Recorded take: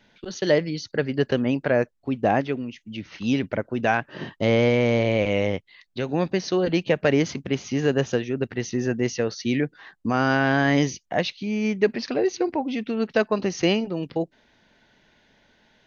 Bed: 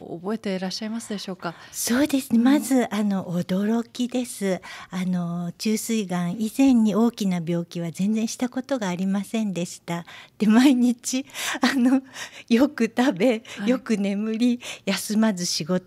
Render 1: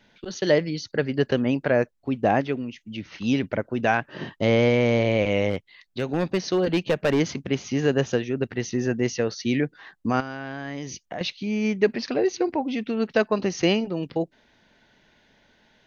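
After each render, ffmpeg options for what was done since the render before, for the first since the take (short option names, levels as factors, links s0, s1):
-filter_complex "[0:a]asplit=3[s0][s1][s2];[s0]afade=t=out:st=5.49:d=0.02[s3];[s1]asoftclip=type=hard:threshold=0.158,afade=t=in:st=5.49:d=0.02,afade=t=out:st=7.19:d=0.02[s4];[s2]afade=t=in:st=7.19:d=0.02[s5];[s3][s4][s5]amix=inputs=3:normalize=0,asettb=1/sr,asplit=3[s6][s7][s8];[s6]atrim=end=10.204[s9];[s7]atrim=start=10.2:end=11.21,asetpts=PTS-STARTPTS,afade=t=in:d=0.004:c=qsin,afade=t=out:st=1.006:d=0.004:c=qsin,acompressor=threshold=0.0355:ratio=6:attack=3.2:release=140:knee=1:detection=peak[s10];[s8]atrim=start=11.206[s11];[s9][s10]acrossfade=d=0.004:c1=hsin:c2=qsin[s12];[s12][s11]acrossfade=d=0.004:c1=qsin:c2=hsin"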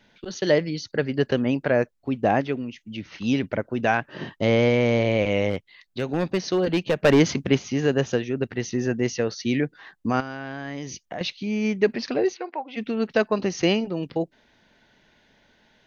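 -filter_complex "[0:a]asplit=3[s0][s1][s2];[s0]afade=t=out:st=7.03:d=0.02[s3];[s1]acontrast=32,afade=t=in:st=7.03:d=0.02,afade=t=out:st=7.57:d=0.02[s4];[s2]afade=t=in:st=7.57:d=0.02[s5];[s3][s4][s5]amix=inputs=3:normalize=0,asplit=3[s6][s7][s8];[s6]afade=t=out:st=12.33:d=0.02[s9];[s7]highpass=700,lowpass=2900,afade=t=in:st=12.33:d=0.02,afade=t=out:st=12.76:d=0.02[s10];[s8]afade=t=in:st=12.76:d=0.02[s11];[s9][s10][s11]amix=inputs=3:normalize=0"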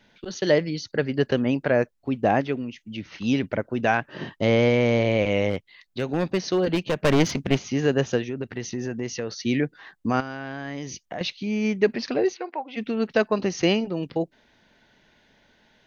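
-filter_complex "[0:a]asettb=1/sr,asplit=3[s0][s1][s2];[s0]atrim=end=6.754[s3];[s1]atrim=start=6.75:end=7.59,asetpts=PTS-STARTPTS,afade=t=in:d=0.004:c=qsin,afade=t=out:st=0.836:d=0.004:c=qsin,aeval=exprs='clip(val(0),-1,0.0562)':c=same[s4];[s2]atrim=start=7.586[s5];[s3][s4]acrossfade=d=0.004:c1=hsin:c2=qsin[s6];[s6][s5]acrossfade=d=0.004:c1=qsin:c2=hsin,asettb=1/sr,asplit=3[s7][s8][s9];[s7]atrim=end=8.264[s10];[s8]atrim=start=8.26:end=9.45,asetpts=PTS-STARTPTS,afade=t=in:d=0.004:c=qsin,afade=t=out:st=1.186:d=0.004:c=qsin,acompressor=threshold=0.0501:ratio=3:attack=3.2:release=140:knee=1:detection=peak[s11];[s9]atrim=start=9.446[s12];[s10][s11]acrossfade=d=0.004:c1=hsin:c2=qsin[s13];[s13][s12]acrossfade=d=0.004:c1=qsin:c2=hsin"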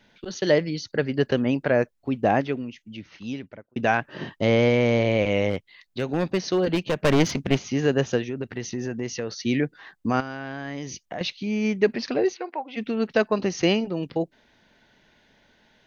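-filter_complex "[0:a]asplit=2[s0][s1];[s0]atrim=end=3.76,asetpts=PTS-STARTPTS,afade=t=out:st=2.45:d=1.31[s2];[s1]atrim=start=3.76,asetpts=PTS-STARTPTS,afade=t=in:d=0.004:c=hsin[s3];[s2][s3]concat=n=2:v=0:a=1"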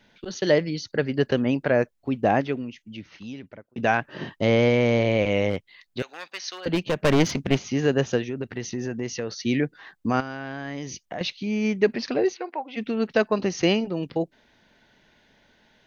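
-filter_complex "[0:a]asettb=1/sr,asplit=3[s0][s1][s2];[s0]atrim=end=3.124[s3];[s1]atrim=start=3.12:end=3.78,asetpts=PTS-STARTPTS,afade=t=in:d=0.004:c=qsin,afade=t=out:st=0.656:d=0.004:c=qsin,acompressor=threshold=0.0158:ratio=2:attack=3.2:release=140:knee=1:detection=peak[s4];[s2]atrim=start=3.776[s5];[s3][s4]acrossfade=d=0.004:c1=hsin:c2=qsin[s6];[s6][s5]acrossfade=d=0.004:c1=qsin:c2=hsin,asettb=1/sr,asplit=3[s7][s8][s9];[s7]atrim=end=6.024[s10];[s8]atrim=start=6.02:end=6.66,asetpts=PTS-STARTPTS,afade=t=in:d=0.004:c=qsin,afade=t=out:st=0.636:d=0.004:c=qsin,highpass=1400[s11];[s9]atrim=start=6.656[s12];[s10][s11]acrossfade=d=0.004:c1=hsin:c2=qsin[s13];[s13][s12]acrossfade=d=0.004:c1=qsin:c2=hsin"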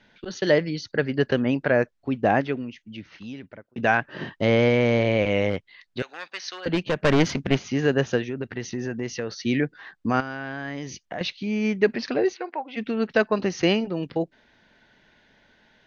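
-af "lowpass=6100,equalizer=f=1600:w=2.3:g=3.5"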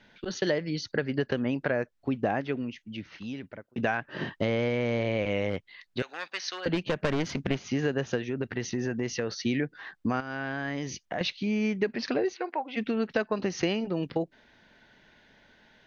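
-af "acompressor=threshold=0.0631:ratio=6"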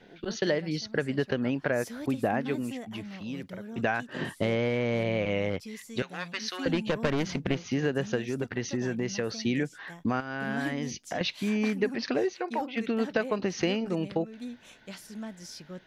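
-filter_complex "[1:a]volume=0.112[s0];[0:a][s0]amix=inputs=2:normalize=0"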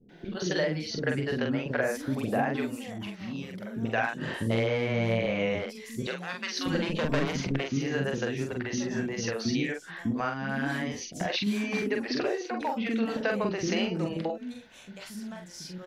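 -filter_complex "[0:a]asplit=2[s0][s1];[s1]adelay=44,volume=0.631[s2];[s0][s2]amix=inputs=2:normalize=0,acrossover=split=370[s3][s4];[s4]adelay=90[s5];[s3][s5]amix=inputs=2:normalize=0"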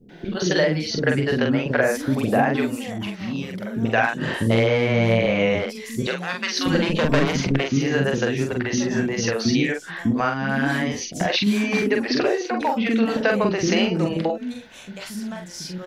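-af "volume=2.66"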